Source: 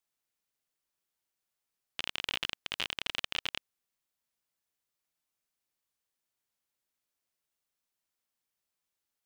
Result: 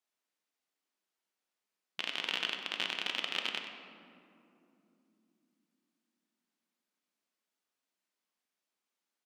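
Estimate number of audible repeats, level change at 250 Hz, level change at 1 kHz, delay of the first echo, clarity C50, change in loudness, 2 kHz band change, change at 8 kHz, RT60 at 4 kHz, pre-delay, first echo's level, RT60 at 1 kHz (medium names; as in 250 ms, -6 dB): 1, +2.5 dB, +1.5 dB, 96 ms, 4.5 dB, +0.5 dB, +1.5 dB, -2.5 dB, 1.3 s, 3 ms, -12.0 dB, 2.5 s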